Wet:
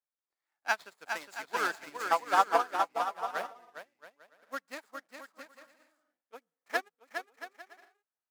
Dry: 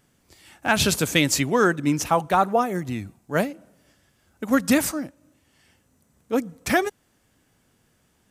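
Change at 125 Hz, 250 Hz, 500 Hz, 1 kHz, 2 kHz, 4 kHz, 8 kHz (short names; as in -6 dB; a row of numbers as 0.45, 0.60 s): under -35 dB, -26.5 dB, -12.5 dB, -5.0 dB, -8.0 dB, -14.5 dB, -20.0 dB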